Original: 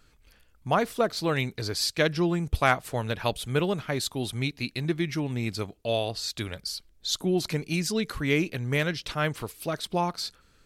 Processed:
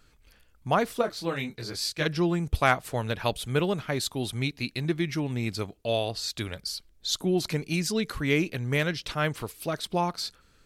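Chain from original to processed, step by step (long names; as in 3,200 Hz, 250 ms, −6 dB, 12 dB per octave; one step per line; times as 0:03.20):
0:01.01–0:02.05: micro pitch shift up and down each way 13 cents → 32 cents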